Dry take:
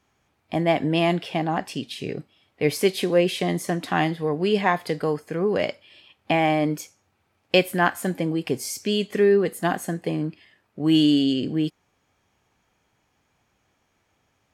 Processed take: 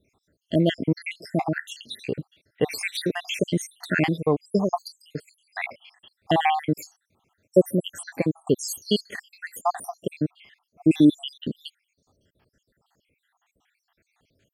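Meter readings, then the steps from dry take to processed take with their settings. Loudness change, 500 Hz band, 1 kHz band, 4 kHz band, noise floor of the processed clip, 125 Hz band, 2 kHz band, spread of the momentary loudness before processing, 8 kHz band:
−2.0 dB, −4.0 dB, −2.5 dB, −3.5 dB, −80 dBFS, −1.0 dB, −3.5 dB, 11 LU, −1.0 dB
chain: time-frequency cells dropped at random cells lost 75%
level +4.5 dB

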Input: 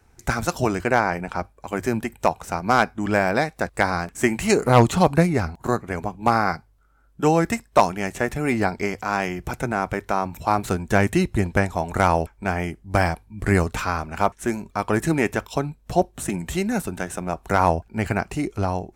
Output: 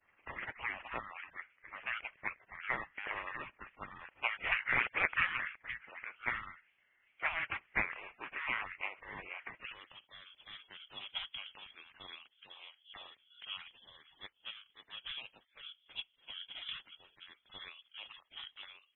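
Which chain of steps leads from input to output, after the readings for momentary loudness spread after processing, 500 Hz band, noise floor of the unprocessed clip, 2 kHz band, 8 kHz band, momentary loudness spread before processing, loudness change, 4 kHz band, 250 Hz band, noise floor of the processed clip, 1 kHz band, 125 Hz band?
19 LU, −31.0 dB, −57 dBFS, −10.5 dB, below −40 dB, 8 LU, −16.5 dB, −6.5 dB, −35.0 dB, −74 dBFS, −22.5 dB, −34.5 dB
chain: gate on every frequency bin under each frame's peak −30 dB weak
band-pass filter sweep 1,700 Hz → 470 Hz, 0:09.51–0:10.05
voice inversion scrambler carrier 3,800 Hz
level +14 dB

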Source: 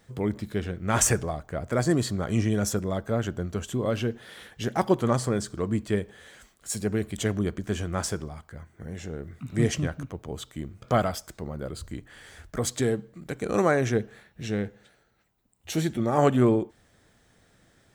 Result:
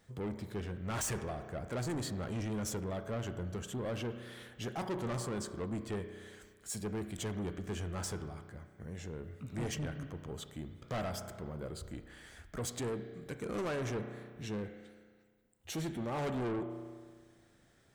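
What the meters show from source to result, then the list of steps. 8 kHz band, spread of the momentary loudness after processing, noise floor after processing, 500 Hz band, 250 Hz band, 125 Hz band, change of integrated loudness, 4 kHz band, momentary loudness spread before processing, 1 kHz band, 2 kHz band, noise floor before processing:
−11.5 dB, 11 LU, −66 dBFS, −12.0 dB, −12.0 dB, −11.0 dB, −12.0 dB, −9.0 dB, 16 LU, −12.5 dB, −11.0 dB, −63 dBFS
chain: spring reverb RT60 1.6 s, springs 33 ms, chirp 45 ms, DRR 11 dB
soft clipping −26.5 dBFS, distortion −7 dB
level −6.5 dB

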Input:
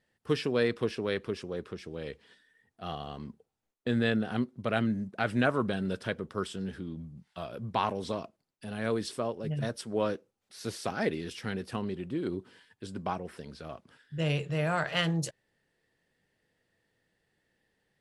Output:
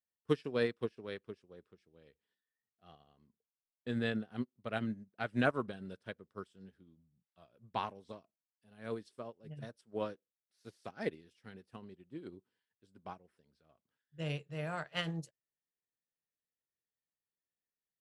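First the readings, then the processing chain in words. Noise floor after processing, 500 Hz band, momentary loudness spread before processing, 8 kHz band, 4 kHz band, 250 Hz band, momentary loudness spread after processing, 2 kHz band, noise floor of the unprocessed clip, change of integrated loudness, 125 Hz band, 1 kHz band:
below −85 dBFS, −8.0 dB, 15 LU, below −15 dB, −9.0 dB, −9.0 dB, 20 LU, −7.5 dB, −82 dBFS, −7.0 dB, −10.0 dB, −8.5 dB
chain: expander for the loud parts 2.5 to 1, over −41 dBFS
level −1.5 dB

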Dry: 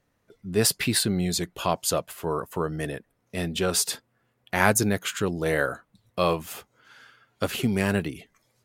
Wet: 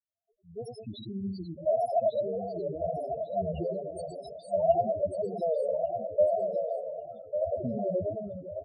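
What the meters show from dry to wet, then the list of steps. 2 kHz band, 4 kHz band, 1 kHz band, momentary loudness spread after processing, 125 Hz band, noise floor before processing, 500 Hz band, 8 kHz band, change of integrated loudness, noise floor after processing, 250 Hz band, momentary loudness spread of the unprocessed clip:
below −40 dB, below −20 dB, −3.0 dB, 14 LU, −11.0 dB, −72 dBFS, +1.5 dB, below −30 dB, −5.0 dB, −71 dBFS, −10.0 dB, 15 LU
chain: fade in at the beginning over 2.44 s
Chebyshev band-stop filter 1,100–3,300 Hz, order 2
parametric band 77 Hz +5.5 dB 0.42 octaves
mains-hum notches 50/100/150/200/250/300 Hz
reverse bouncing-ball delay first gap 100 ms, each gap 1.15×, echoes 5
downward compressor 4 to 1, threshold −25 dBFS, peak gain reduction 8 dB
hollow resonant body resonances 640/1,800 Hz, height 16 dB, ringing for 45 ms
tape wow and flutter 150 cents
dynamic equaliser 1,600 Hz, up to −6 dB, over −51 dBFS, Q 2.3
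spectral peaks only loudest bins 4
repeating echo 1,148 ms, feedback 26%, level −8 dB
level −2 dB

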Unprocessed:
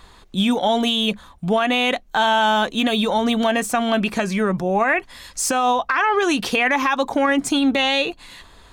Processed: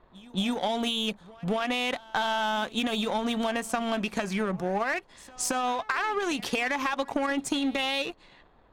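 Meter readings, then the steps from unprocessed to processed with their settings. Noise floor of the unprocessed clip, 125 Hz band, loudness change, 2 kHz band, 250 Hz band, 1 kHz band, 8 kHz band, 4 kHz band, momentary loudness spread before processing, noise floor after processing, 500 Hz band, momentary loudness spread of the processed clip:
−48 dBFS, −8.5 dB, −9.5 dB, −9.5 dB, −9.5 dB, −10.0 dB, −8.0 dB, −9.0 dB, 5 LU, −59 dBFS, −9.5 dB, 4 LU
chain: noise in a band 110–1,000 Hz −49 dBFS
downward compressor, threshold −19 dBFS, peak gain reduction 5.5 dB
power curve on the samples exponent 1.4
low-pass that shuts in the quiet parts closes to 1,800 Hz, open at −25.5 dBFS
echo ahead of the sound 223 ms −22 dB
level −2 dB

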